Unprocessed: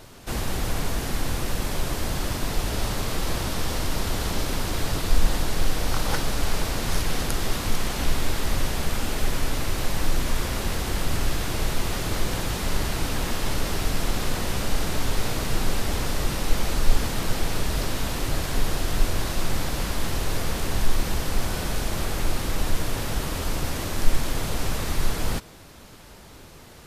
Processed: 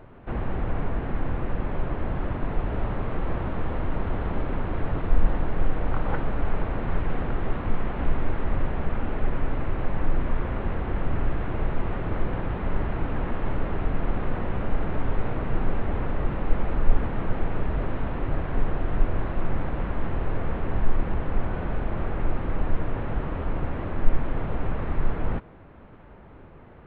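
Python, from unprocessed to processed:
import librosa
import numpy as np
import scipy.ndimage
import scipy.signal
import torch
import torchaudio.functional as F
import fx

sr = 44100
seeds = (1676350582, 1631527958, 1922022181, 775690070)

y = scipy.ndimage.gaussian_filter1d(x, 4.4, mode='constant')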